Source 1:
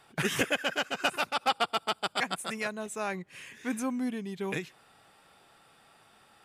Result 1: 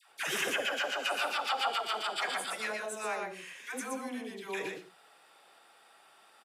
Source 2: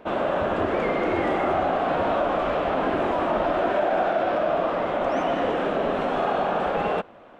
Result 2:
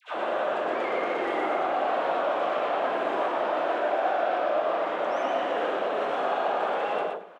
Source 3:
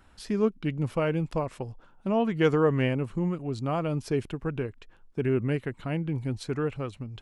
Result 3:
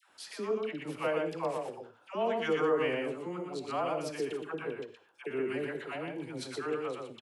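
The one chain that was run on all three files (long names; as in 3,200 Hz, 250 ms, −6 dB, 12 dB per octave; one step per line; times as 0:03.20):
reverb whose tail is shaped and stops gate 120 ms flat, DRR 11 dB
in parallel at −1 dB: brickwall limiter −21.5 dBFS
on the sum: high-pass filter 410 Hz 12 dB per octave
all-pass dispersion lows, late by 100 ms, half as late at 830 Hz
on a send: single-tap delay 120 ms −4 dB
on the sum: every ending faded ahead of time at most 190 dB per second
level −7 dB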